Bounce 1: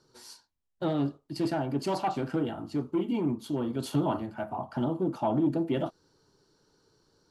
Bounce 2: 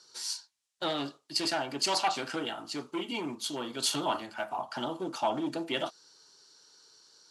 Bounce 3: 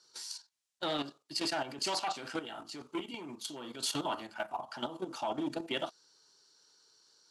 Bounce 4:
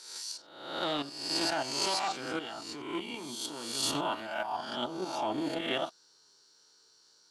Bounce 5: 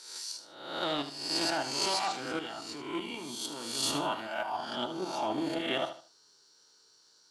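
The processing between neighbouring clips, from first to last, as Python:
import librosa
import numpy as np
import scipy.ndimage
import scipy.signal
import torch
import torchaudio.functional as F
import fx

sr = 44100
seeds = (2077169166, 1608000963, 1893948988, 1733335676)

y1 = fx.weighting(x, sr, curve='ITU-R 468')
y1 = y1 * librosa.db_to_amplitude(2.5)
y2 = fx.level_steps(y1, sr, step_db=11)
y3 = fx.spec_swells(y2, sr, rise_s=0.86)
y4 = fx.echo_feedback(y3, sr, ms=76, feedback_pct=29, wet_db=-11)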